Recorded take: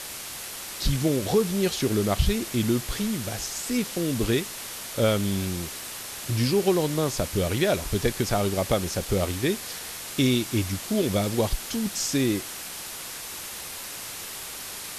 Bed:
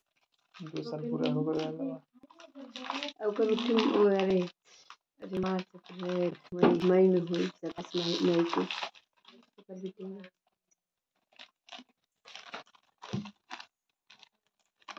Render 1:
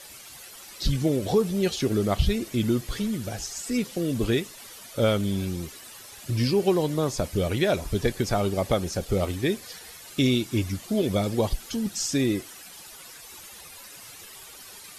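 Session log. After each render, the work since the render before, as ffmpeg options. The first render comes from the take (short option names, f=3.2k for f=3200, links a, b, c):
-af "afftdn=nr=12:nf=-37"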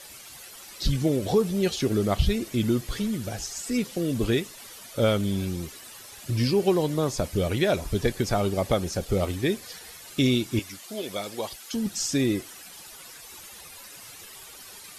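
-filter_complex "[0:a]asettb=1/sr,asplit=3[a][b][c];[a]atrim=end=10.594[d];[b]atrim=start=10.59:end=11.74,asetpts=PTS-STARTPTS,afade=t=in:d=0.004:c=qsin,afade=t=out:st=1.146:d=0.004:c=qsin,highpass=f=990:p=1[e];[c]atrim=start=11.736[f];[d][e]acrossfade=d=0.004:c1=hsin:c2=qsin[g];[g][f]acrossfade=d=0.004:c1=qsin:c2=hsin"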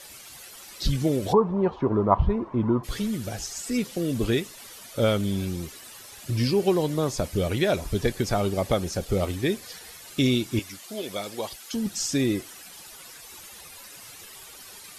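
-filter_complex "[0:a]asplit=3[a][b][c];[a]afade=t=out:st=1.32:d=0.02[d];[b]lowpass=f=1k:t=q:w=10,afade=t=in:st=1.32:d=0.02,afade=t=out:st=2.83:d=0.02[e];[c]afade=t=in:st=2.83:d=0.02[f];[d][e][f]amix=inputs=3:normalize=0"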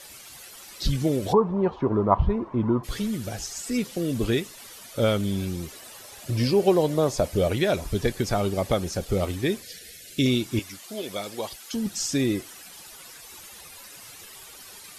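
-filter_complex "[0:a]asettb=1/sr,asplit=3[a][b][c];[a]atrim=end=5.694[d];[b]atrim=start=5.69:end=7.53,asetpts=PTS-STARTPTS,afade=t=in:d=0.004:c=qsin,afade=t=out:st=1.836:d=0.004:c=qsin,equalizer=f=610:w=1.5:g=6.5[e];[c]atrim=start=7.526[f];[d][e]acrossfade=d=0.004:c1=hsin:c2=qsin[g];[g][f]acrossfade=d=0.004:c1=qsin:c2=hsin,asettb=1/sr,asplit=3[h][i][j];[h]atrim=end=9.624[k];[i]atrim=start=9.62:end=10.26,asetpts=PTS-STARTPTS,afade=t=in:d=0.004:c=qsin,afade=t=out:st=0.636:d=0.004:c=qsin,asuperstop=centerf=1000:order=4:qfactor=0.88[l];[j]atrim=start=10.256[m];[k][l]acrossfade=d=0.004:c1=hsin:c2=qsin[n];[n][m]acrossfade=d=0.004:c1=qsin:c2=hsin"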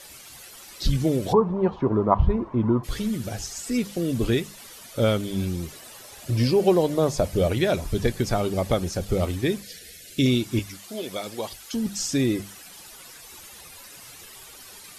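-af "lowshelf=f=210:g=4,bandreject=f=50:t=h:w=6,bandreject=f=100:t=h:w=6,bandreject=f=150:t=h:w=6,bandreject=f=200:t=h:w=6"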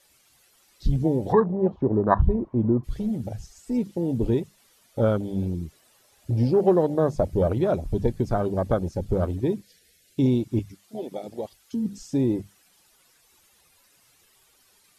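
-af "afwtdn=0.0447"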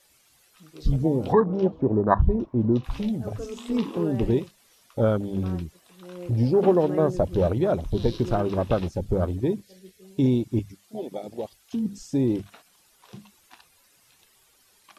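-filter_complex "[1:a]volume=-8dB[a];[0:a][a]amix=inputs=2:normalize=0"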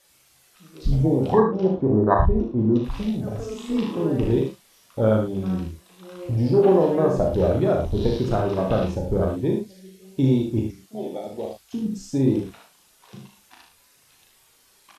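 -filter_complex "[0:a]asplit=2[a][b];[b]adelay=37,volume=-5dB[c];[a][c]amix=inputs=2:normalize=0,aecho=1:1:60|75:0.398|0.447"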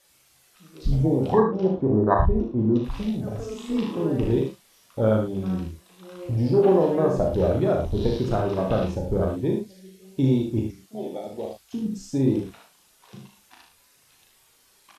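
-af "volume=-1.5dB"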